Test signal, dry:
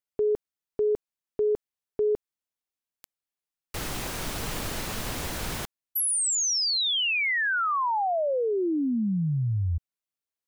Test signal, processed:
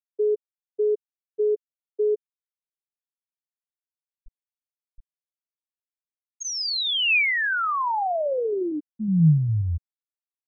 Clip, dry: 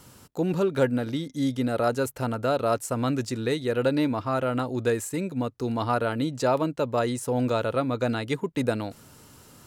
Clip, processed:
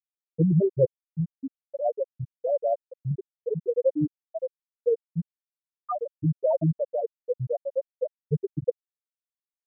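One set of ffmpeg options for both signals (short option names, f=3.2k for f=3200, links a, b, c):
-af "equalizer=f=160:t=o:w=0.33:g=10,equalizer=f=250:t=o:w=0.33:g=-9,equalizer=f=2.5k:t=o:w=0.33:g=5,equalizer=f=10k:t=o:w=0.33:g=-12,afftfilt=real='re*gte(hypot(re,im),0.501)':imag='im*gte(hypot(re,im),0.501)':win_size=1024:overlap=0.75,volume=3dB"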